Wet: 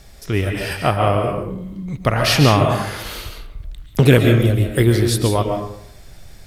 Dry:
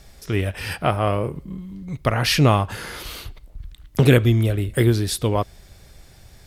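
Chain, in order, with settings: digital reverb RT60 0.69 s, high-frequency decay 0.55×, pre-delay 0.1 s, DRR 3.5 dB; gain +2.5 dB

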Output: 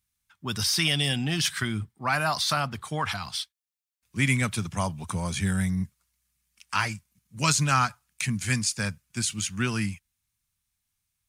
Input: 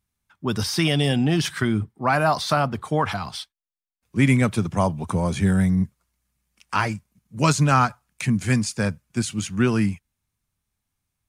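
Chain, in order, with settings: passive tone stack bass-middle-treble 5-5-5; gain +9 dB

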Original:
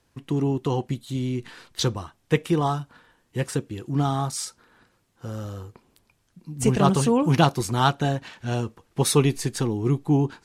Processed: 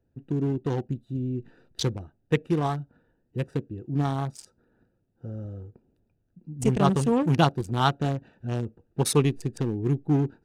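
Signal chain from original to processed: Wiener smoothing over 41 samples; gain -2 dB

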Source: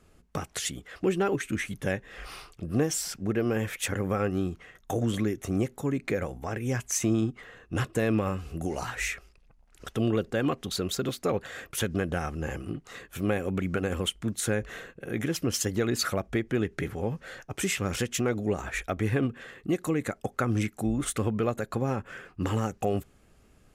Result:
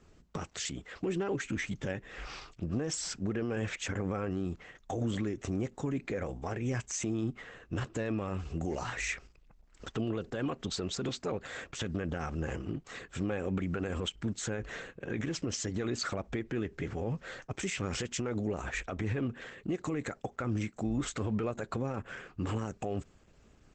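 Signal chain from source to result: limiter -24.5 dBFS, peak gain reduction 10 dB; 17.6–18.27 gate with hold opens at -37 dBFS; Opus 12 kbps 48000 Hz

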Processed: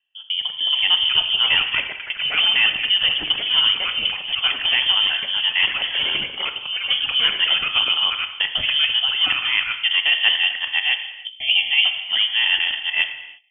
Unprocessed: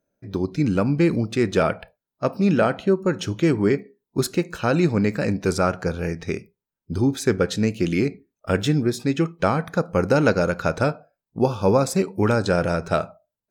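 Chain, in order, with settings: local time reversal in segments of 0.15 s; HPF 83 Hz; non-linear reverb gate 0.37 s falling, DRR 6.5 dB; echoes that change speed 0.512 s, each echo +6 st, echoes 3, each echo -6 dB; inverted band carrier 3300 Hz

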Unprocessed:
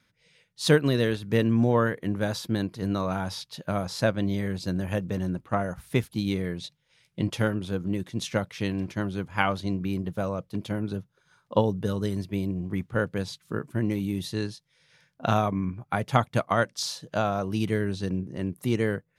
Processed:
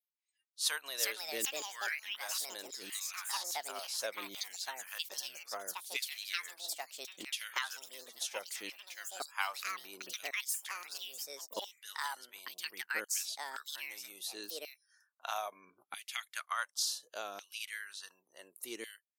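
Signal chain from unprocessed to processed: LFO high-pass saw down 0.69 Hz 290–3200 Hz; spectral noise reduction 30 dB; echoes that change speed 0.535 s, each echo +5 st, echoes 2; pre-emphasis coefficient 0.97

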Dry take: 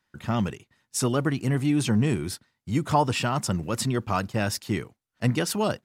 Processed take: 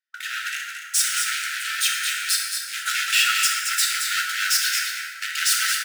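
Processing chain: sample leveller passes 5; AGC; soft clip -13.5 dBFS, distortion -11 dB; brick-wall FIR high-pass 1300 Hz; on a send: echo 0.222 s -6.5 dB; on the sum: plate-style reverb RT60 2.4 s, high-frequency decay 0.45×, DRR -1.5 dB; gain -4.5 dB

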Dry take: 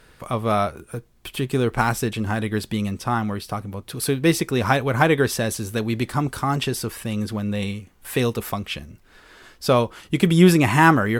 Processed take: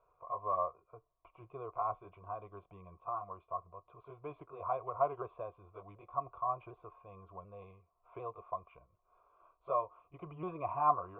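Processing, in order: repeated pitch sweeps -2.5 st, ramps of 0.745 s; vocal tract filter a; fixed phaser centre 1200 Hz, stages 8; gain +2.5 dB

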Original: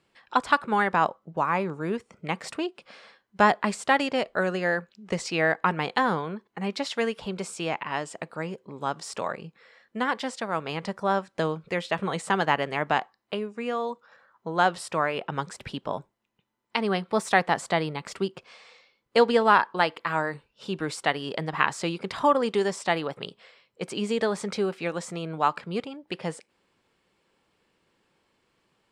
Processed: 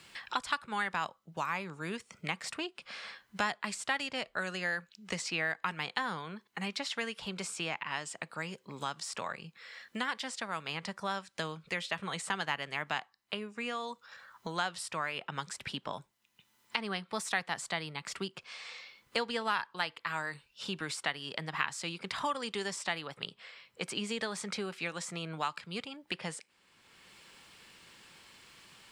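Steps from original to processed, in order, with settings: passive tone stack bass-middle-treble 5-5-5; three-band squash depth 70%; gain +4.5 dB

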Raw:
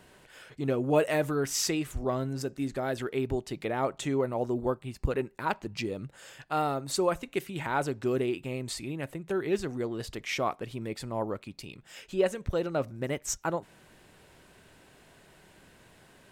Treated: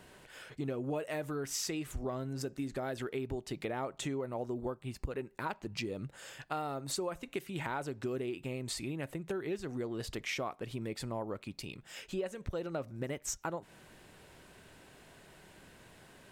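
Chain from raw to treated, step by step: compressor 6:1, threshold -34 dBFS, peak gain reduction 14.5 dB

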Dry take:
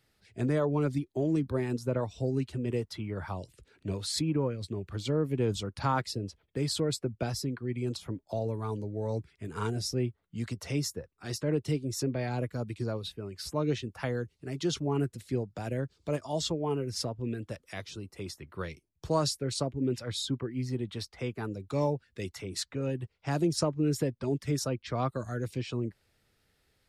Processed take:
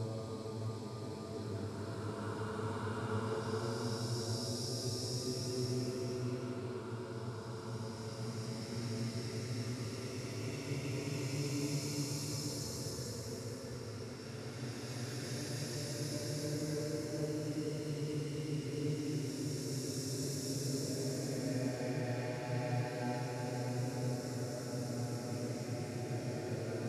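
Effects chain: limiter -23.5 dBFS, peak gain reduction 9 dB; on a send: diffused feedback echo 0.585 s, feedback 70%, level -7 dB; on the sum: Paulstretch 7.4×, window 0.50 s, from 9.21; gain -6 dB

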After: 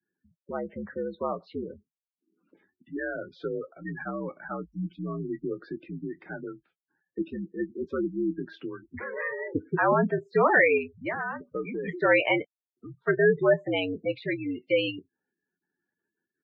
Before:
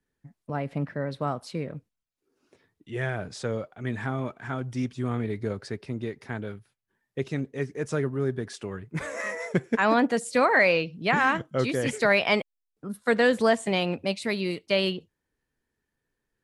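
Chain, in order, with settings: spectral gate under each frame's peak -15 dB strong; 10.77–11.88 compressor 10:1, threshold -28 dBFS, peak gain reduction 11 dB; early reflections 12 ms -10 dB, 25 ms -16 dB; mistuned SSB -71 Hz 270–3500 Hz

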